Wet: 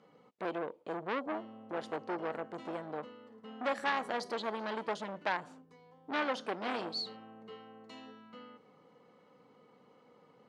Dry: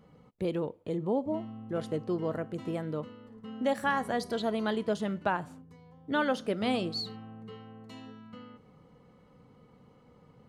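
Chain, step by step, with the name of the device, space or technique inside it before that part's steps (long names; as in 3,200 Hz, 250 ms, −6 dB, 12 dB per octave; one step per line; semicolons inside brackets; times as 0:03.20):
public-address speaker with an overloaded transformer (saturating transformer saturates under 1,900 Hz; band-pass filter 310–6,700 Hz)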